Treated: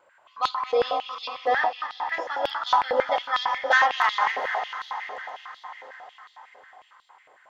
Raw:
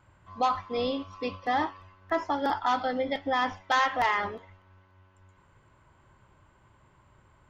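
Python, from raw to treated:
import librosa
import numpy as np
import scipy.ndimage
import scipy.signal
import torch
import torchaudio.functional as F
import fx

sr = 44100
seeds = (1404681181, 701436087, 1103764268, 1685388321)

p1 = fx.reverse_delay_fb(x, sr, ms=144, feedback_pct=42, wet_db=-8)
p2 = p1 + fx.echo_diffused(p1, sr, ms=457, feedback_pct=55, wet_db=-9, dry=0)
y = fx.filter_held_highpass(p2, sr, hz=11.0, low_hz=520.0, high_hz=3800.0)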